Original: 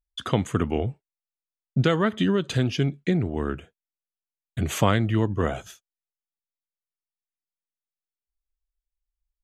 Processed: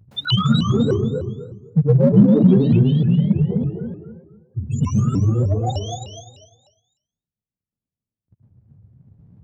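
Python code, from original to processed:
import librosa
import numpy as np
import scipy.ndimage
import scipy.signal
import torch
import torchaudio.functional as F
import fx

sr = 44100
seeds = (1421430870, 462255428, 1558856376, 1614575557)

p1 = x + 0.5 * 10.0 ** (-23.0 / 20.0) * np.sign(x)
p2 = fx.high_shelf(p1, sr, hz=5200.0, db=5.5)
p3 = fx.hum_notches(p2, sr, base_hz=60, count=8)
p4 = fx.spec_topn(p3, sr, count=2)
p5 = fx.transient(p4, sr, attack_db=6, sustain_db=-12)
p6 = scipy.signal.sosfilt(scipy.signal.butter(4, 130.0, 'highpass', fs=sr, output='sos'), p5)
p7 = fx.echo_feedback(p6, sr, ms=250, feedback_pct=31, wet_db=-5.5)
p8 = fx.rev_plate(p7, sr, seeds[0], rt60_s=0.59, hf_ratio=1.0, predelay_ms=105, drr_db=-4.0)
p9 = np.clip(p8, -10.0 ** (-20.0 / 20.0), 10.0 ** (-20.0 / 20.0))
p10 = p8 + (p9 * librosa.db_to_amplitude(-10.0))
p11 = fx.vibrato_shape(p10, sr, shape='saw_up', rate_hz=3.3, depth_cents=250.0)
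y = p11 * librosa.db_to_amplitude(3.5)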